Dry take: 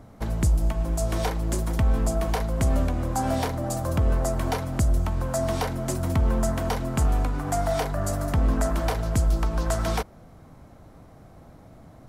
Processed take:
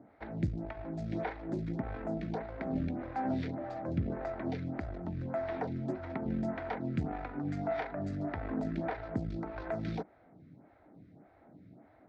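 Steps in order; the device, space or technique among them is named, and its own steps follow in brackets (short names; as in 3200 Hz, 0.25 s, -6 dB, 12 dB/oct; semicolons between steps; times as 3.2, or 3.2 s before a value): vibe pedal into a guitar amplifier (photocell phaser 1.7 Hz; tube stage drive 18 dB, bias 0.6; speaker cabinet 110–3400 Hz, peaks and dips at 180 Hz +3 dB, 300 Hz +5 dB, 510 Hz -4 dB, 1100 Hz -10 dB, 2000 Hz +3 dB, 3000 Hz -9 dB); gain -2 dB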